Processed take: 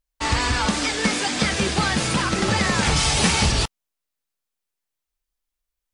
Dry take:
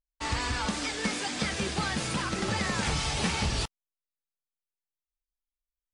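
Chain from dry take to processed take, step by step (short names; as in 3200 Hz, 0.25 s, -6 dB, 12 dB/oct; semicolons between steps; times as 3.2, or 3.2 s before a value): 2.96–3.52 high shelf 6400 Hz +7.5 dB; gain +9 dB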